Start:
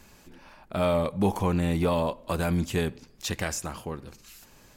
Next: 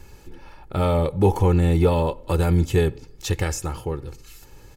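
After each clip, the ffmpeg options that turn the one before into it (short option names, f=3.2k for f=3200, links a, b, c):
-af "lowshelf=f=400:g=10,aecho=1:1:2.3:0.66"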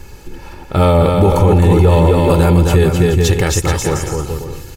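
-af "aecho=1:1:260|429|538.8|610.3|656.7:0.631|0.398|0.251|0.158|0.1,alimiter=level_in=11dB:limit=-1dB:release=50:level=0:latency=1,volume=-1dB"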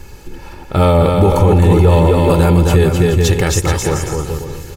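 -af "aecho=1:1:409|818|1227|1636|2045:0.1|0.057|0.0325|0.0185|0.0106"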